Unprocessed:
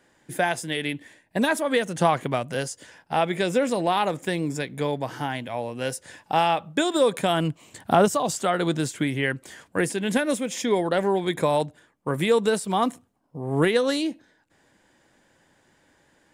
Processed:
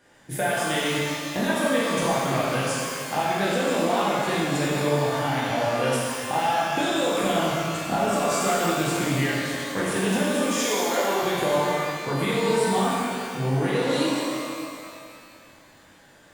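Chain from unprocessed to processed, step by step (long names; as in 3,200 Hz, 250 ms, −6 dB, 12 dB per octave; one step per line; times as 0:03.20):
0:10.44–0:11.23: high-pass filter 490 Hz 12 dB per octave
downward compressor, threshold −28 dBFS, peak gain reduction 14 dB
reverb with rising layers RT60 2.2 s, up +12 semitones, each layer −8 dB, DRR −7.5 dB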